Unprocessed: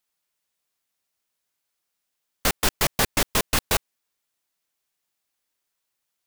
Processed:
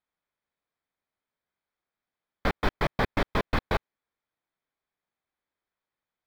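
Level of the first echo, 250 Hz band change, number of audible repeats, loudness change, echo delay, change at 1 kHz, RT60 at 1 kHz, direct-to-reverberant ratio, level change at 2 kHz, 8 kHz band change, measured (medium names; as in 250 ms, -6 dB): no echo, -0.5 dB, no echo, -6.5 dB, no echo, -2.0 dB, no reverb, no reverb, -4.5 dB, -27.5 dB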